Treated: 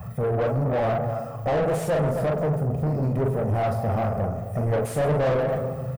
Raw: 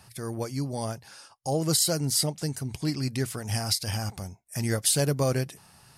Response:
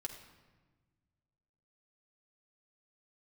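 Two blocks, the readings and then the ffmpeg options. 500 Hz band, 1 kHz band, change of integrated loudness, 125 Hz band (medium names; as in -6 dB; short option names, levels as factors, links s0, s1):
+9.5 dB, +9.5 dB, +3.0 dB, +5.0 dB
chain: -filter_complex "[0:a]aeval=exprs='val(0)+0.5*0.0178*sgn(val(0))':c=same,aemphasis=mode=production:type=50kf,deesser=0.6,afwtdn=0.02,equalizer=f=4300:t=o:w=1.7:g=-14,aecho=1:1:1.6:0.83,flanger=delay=0.7:depth=9.5:regen=65:speed=1.7:shape=triangular,asplit=2[s0][s1];[s1]adelay=260,highpass=300,lowpass=3400,asoftclip=type=hard:threshold=0.0501,volume=0.178[s2];[s0][s2]amix=inputs=2:normalize=0,asplit=2[s3][s4];[1:a]atrim=start_sample=2205,adelay=41[s5];[s4][s5]afir=irnorm=-1:irlink=0,volume=0.841[s6];[s3][s6]amix=inputs=2:normalize=0,asplit=2[s7][s8];[s8]highpass=f=720:p=1,volume=39.8,asoftclip=type=tanh:threshold=0.188[s9];[s7][s9]amix=inputs=2:normalize=0,lowpass=f=1100:p=1,volume=0.501"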